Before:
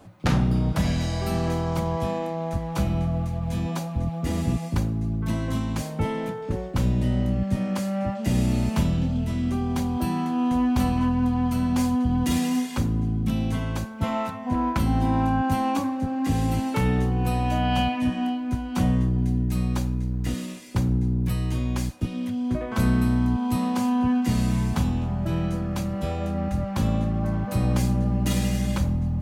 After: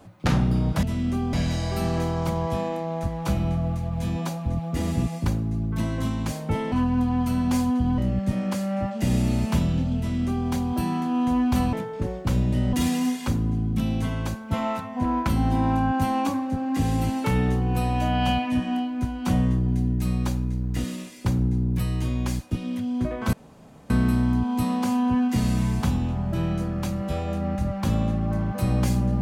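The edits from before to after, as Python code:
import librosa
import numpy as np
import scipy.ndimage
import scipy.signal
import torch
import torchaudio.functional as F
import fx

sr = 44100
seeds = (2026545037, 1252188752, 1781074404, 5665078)

y = fx.edit(x, sr, fx.swap(start_s=6.22, length_s=1.0, other_s=10.97, other_length_s=1.26),
    fx.duplicate(start_s=9.22, length_s=0.5, to_s=0.83),
    fx.insert_room_tone(at_s=22.83, length_s=0.57), tone=tone)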